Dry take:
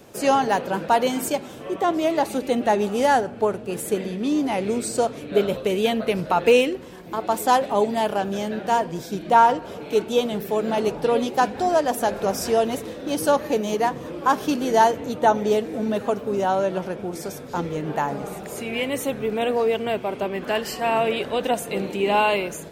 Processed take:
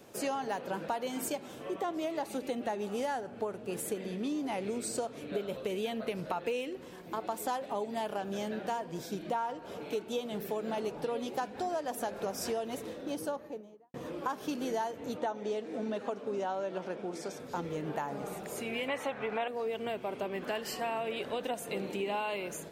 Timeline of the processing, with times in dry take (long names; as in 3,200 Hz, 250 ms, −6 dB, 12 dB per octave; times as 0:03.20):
0:12.71–0:13.94: fade out and dull
0:15.17–0:17.40: band-pass filter 190–7,200 Hz
0:18.88–0:19.48: drawn EQ curve 390 Hz 0 dB, 810 Hz +14 dB, 2,000 Hz +12 dB, 13,000 Hz −11 dB
whole clip: low-shelf EQ 89 Hz −9 dB; downward compressor 6 to 1, threshold −25 dBFS; level −6.5 dB